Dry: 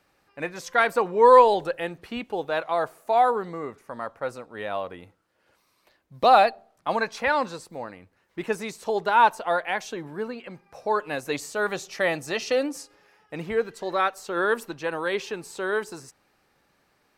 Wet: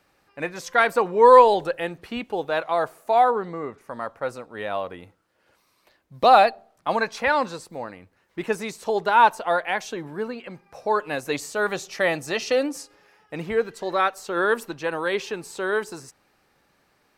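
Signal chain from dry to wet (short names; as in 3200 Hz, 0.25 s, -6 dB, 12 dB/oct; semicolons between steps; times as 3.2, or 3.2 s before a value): 3.24–3.81 LPF 3800 Hz 6 dB/oct; gain +2 dB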